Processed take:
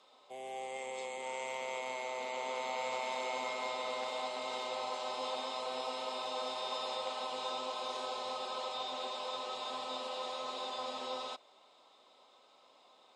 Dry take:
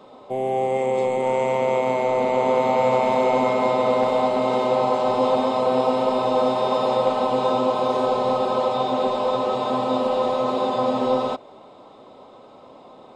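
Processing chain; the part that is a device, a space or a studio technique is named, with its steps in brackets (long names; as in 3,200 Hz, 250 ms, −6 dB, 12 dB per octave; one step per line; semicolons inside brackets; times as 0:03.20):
piezo pickup straight into a mixer (low-pass filter 6,400 Hz 12 dB per octave; first difference)
level +1 dB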